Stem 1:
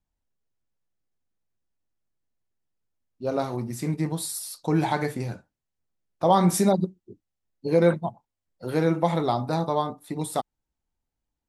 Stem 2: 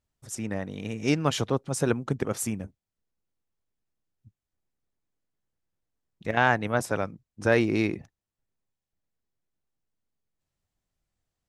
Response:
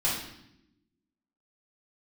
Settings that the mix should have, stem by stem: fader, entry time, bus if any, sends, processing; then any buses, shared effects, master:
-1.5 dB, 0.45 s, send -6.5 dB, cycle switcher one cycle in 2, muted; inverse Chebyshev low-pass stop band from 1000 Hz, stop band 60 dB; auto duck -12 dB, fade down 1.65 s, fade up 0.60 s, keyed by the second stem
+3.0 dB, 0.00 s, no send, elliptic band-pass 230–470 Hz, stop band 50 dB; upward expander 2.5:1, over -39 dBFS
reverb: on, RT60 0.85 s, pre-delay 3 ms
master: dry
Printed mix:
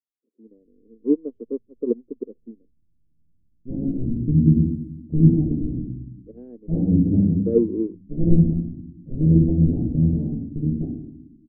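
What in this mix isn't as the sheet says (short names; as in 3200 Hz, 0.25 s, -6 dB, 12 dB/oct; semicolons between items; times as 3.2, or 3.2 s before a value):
stem 1 -1.5 dB -> +5.5 dB; stem 2 +3.0 dB -> +9.5 dB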